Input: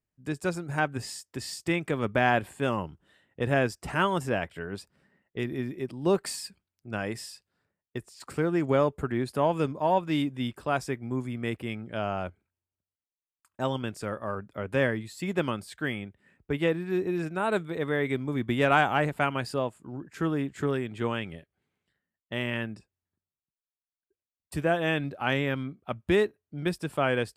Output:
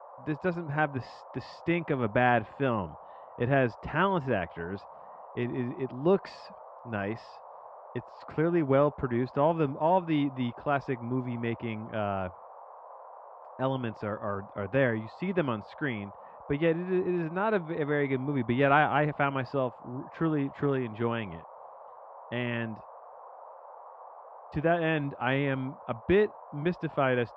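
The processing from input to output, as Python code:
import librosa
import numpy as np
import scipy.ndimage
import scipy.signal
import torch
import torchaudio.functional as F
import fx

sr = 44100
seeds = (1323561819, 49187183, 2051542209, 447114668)

y = scipy.ndimage.gaussian_filter1d(x, 2.5, mode='constant')
y = fx.dmg_noise_band(y, sr, seeds[0], low_hz=510.0, high_hz=1100.0, level_db=-48.0)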